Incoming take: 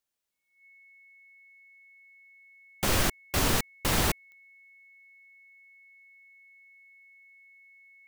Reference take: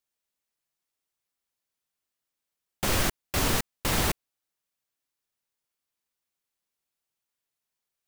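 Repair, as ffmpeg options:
-af "adeclick=t=4,bandreject=f=2.2k:w=30"

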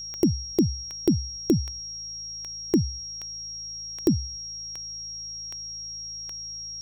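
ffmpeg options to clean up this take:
-af "adeclick=t=4,bandreject=f=54.4:t=h:w=4,bandreject=f=108.8:t=h:w=4,bandreject=f=163.2:t=h:w=4,bandreject=f=5.6k:w=30,afftdn=nr=30:nf=-37"

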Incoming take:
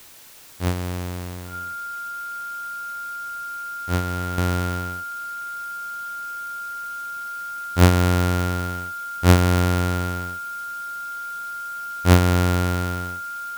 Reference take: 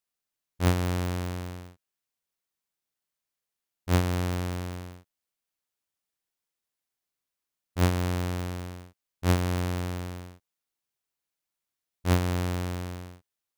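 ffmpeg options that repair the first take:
-af "bandreject=f=1.4k:w=30,afwtdn=0.005,asetnsamples=n=441:p=0,asendcmd='4.38 volume volume -9.5dB',volume=0dB"

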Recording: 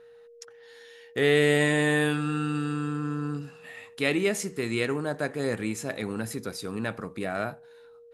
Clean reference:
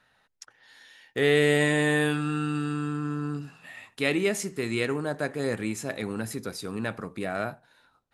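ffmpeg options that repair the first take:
-af "bandreject=f=470:w=30"

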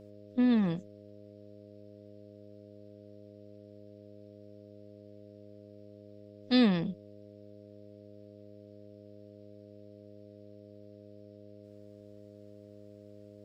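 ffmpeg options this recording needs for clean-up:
-af "bandreject=f=103:t=h:w=4,bandreject=f=206:t=h:w=4,bandreject=f=309:t=h:w=4,bandreject=f=412:t=h:w=4,bandreject=f=515:t=h:w=4,bandreject=f=618:t=h:w=4,agate=range=-21dB:threshold=-44dB"

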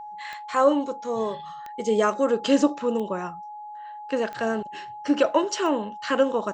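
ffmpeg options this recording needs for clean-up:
-af "adeclick=t=4,bandreject=f=840:w=30"

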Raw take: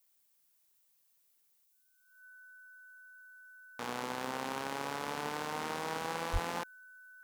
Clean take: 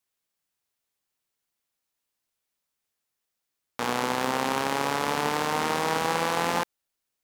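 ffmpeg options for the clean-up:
-filter_complex "[0:a]bandreject=f=1.5k:w=30,asplit=3[a][b][c];[a]afade=t=out:st=6.32:d=0.02[d];[b]highpass=f=140:w=0.5412,highpass=f=140:w=1.3066,afade=t=in:st=6.32:d=0.02,afade=t=out:st=6.44:d=0.02[e];[c]afade=t=in:st=6.44:d=0.02[f];[d][e][f]amix=inputs=3:normalize=0,agate=range=-21dB:threshold=-64dB,asetnsamples=n=441:p=0,asendcmd='1.64 volume volume 11.5dB',volume=0dB"

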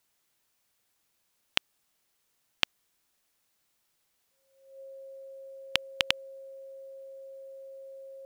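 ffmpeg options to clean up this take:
-af "bandreject=f=540:w=30"

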